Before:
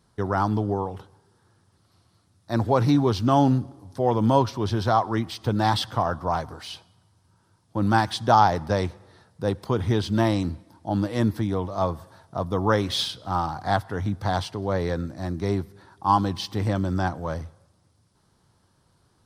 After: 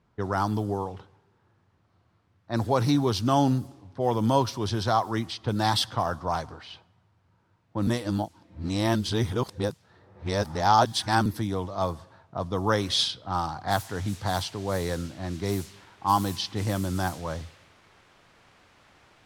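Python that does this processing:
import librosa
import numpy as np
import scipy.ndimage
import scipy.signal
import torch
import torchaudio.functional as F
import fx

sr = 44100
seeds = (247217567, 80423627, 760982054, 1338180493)

y = fx.noise_floor_step(x, sr, seeds[0], at_s=13.68, before_db=-64, after_db=-46, tilt_db=0.0)
y = fx.edit(y, sr, fx.reverse_span(start_s=7.87, length_s=3.39), tone=tone)
y = fx.env_lowpass(y, sr, base_hz=1400.0, full_db=-19.0)
y = fx.high_shelf(y, sr, hz=3400.0, db=10.0)
y = y * 10.0 ** (-3.5 / 20.0)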